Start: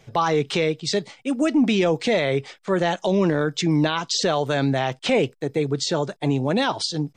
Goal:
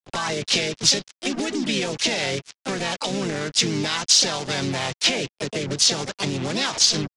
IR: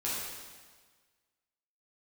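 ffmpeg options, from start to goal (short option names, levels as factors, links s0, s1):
-filter_complex "[0:a]aresample=16000,acrusher=bits=4:mix=0:aa=0.5,aresample=44100,acompressor=threshold=0.0631:ratio=16,asplit=4[s0][s1][s2][s3];[s1]asetrate=33038,aresample=44100,atempo=1.33484,volume=0.282[s4];[s2]asetrate=35002,aresample=44100,atempo=1.25992,volume=0.178[s5];[s3]asetrate=58866,aresample=44100,atempo=0.749154,volume=0.562[s6];[s0][s4][s5][s6]amix=inputs=4:normalize=0,adynamicequalizer=threshold=0.00794:dfrequency=5600:dqfactor=1.9:tfrequency=5600:tqfactor=1.9:attack=5:release=100:ratio=0.375:range=2.5:mode=boostabove:tftype=bell,acrossover=split=250|1800[s7][s8][s9];[s8]alimiter=limit=0.0708:level=0:latency=1:release=122[s10];[s9]acontrast=85[s11];[s7][s10][s11]amix=inputs=3:normalize=0,volume=1.19"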